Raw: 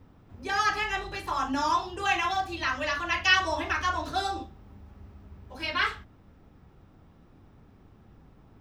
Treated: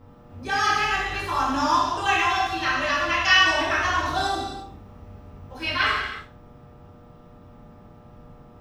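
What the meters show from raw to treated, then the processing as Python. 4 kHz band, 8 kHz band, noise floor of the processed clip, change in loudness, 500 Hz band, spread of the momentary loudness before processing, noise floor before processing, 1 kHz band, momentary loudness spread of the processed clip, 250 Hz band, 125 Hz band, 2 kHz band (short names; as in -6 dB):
+6.5 dB, +5.5 dB, -48 dBFS, +5.5 dB, +5.5 dB, 12 LU, -57 dBFS, +5.5 dB, 14 LU, +5.0 dB, +5.5 dB, +6.0 dB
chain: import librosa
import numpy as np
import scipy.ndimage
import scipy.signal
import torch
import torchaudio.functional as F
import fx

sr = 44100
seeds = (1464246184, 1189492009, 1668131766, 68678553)

y = fx.dmg_buzz(x, sr, base_hz=120.0, harmonics=11, level_db=-59.0, tilt_db=-3, odd_only=False)
y = fx.rev_gated(y, sr, seeds[0], gate_ms=380, shape='falling', drr_db=-4.5)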